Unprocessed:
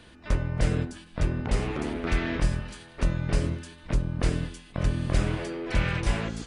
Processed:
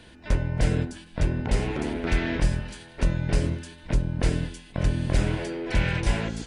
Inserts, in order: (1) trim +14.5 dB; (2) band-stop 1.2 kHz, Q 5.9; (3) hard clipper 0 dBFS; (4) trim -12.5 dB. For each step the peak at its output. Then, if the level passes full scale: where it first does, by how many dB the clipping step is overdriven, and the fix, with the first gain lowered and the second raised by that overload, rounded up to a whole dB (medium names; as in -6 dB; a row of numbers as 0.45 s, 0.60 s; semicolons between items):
+4.0 dBFS, +4.0 dBFS, 0.0 dBFS, -12.5 dBFS; step 1, 4.0 dB; step 1 +10.5 dB, step 4 -8.5 dB